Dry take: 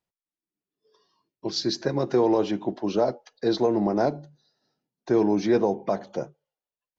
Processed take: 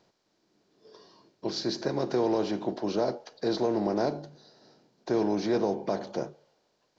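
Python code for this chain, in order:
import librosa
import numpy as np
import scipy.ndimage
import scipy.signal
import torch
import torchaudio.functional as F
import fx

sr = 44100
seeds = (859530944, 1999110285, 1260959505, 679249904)

y = fx.bin_compress(x, sr, power=0.6)
y = F.gain(torch.from_numpy(y), -7.5).numpy()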